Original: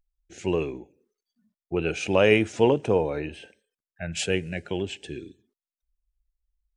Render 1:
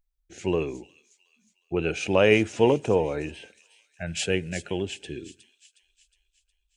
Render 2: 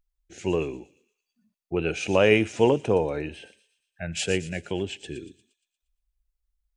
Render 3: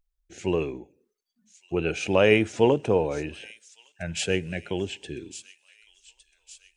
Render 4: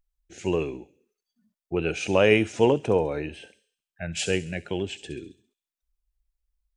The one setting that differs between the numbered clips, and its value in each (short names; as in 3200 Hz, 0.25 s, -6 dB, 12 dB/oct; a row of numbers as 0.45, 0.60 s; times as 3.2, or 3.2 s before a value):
thin delay, time: 363, 117, 1159, 67 ms